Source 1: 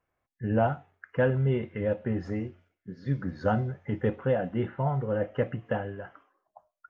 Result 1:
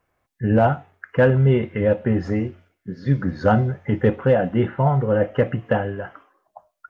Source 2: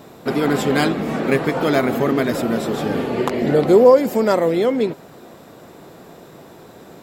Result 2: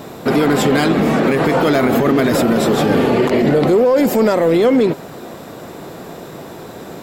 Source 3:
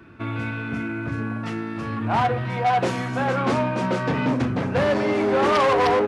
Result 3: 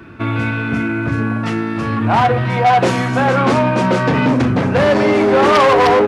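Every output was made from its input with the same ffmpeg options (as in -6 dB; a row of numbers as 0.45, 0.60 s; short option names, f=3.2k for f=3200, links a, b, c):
-filter_complex "[0:a]asplit=2[a][b];[b]volume=17.5dB,asoftclip=hard,volume=-17.5dB,volume=-6dB[c];[a][c]amix=inputs=2:normalize=0,alimiter=level_in=11.5dB:limit=-1dB:release=50:level=0:latency=1,volume=-5.5dB"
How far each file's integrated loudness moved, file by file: +9.0, +3.5, +8.5 LU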